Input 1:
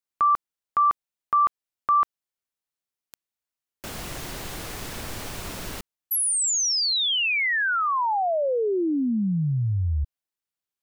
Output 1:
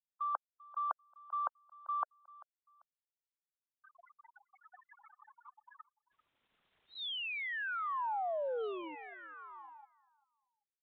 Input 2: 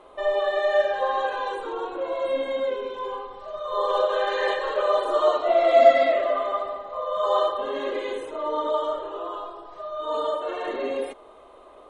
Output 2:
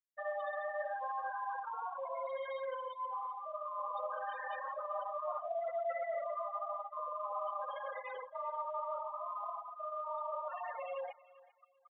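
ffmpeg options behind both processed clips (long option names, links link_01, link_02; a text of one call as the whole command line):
ffmpeg -i in.wav -filter_complex "[0:a]asplit=2[link_01][link_02];[link_02]acrusher=bits=4:mix=0:aa=0.000001,volume=-9dB[link_03];[link_01][link_03]amix=inputs=2:normalize=0,highpass=frequency=760:width=0.5412,highpass=frequency=760:width=1.3066,areverse,acompressor=threshold=-37dB:ratio=8:attack=7.2:release=279:knee=1:detection=peak,areverse,afftfilt=real='re*gte(hypot(re,im),0.0251)':imag='im*gte(hypot(re,im),0.0251)':win_size=1024:overlap=0.75,aemphasis=mode=reproduction:type=bsi,acrusher=bits=7:mode=log:mix=0:aa=0.000001,aecho=1:1:392|784:0.0891|0.0232,aresample=8000,aresample=44100,adynamicequalizer=threshold=0.00282:dfrequency=1500:dqfactor=0.7:tfrequency=1500:tqfactor=0.7:attack=5:release=100:ratio=0.375:range=2:mode=cutabove:tftype=highshelf,volume=2dB" out.wav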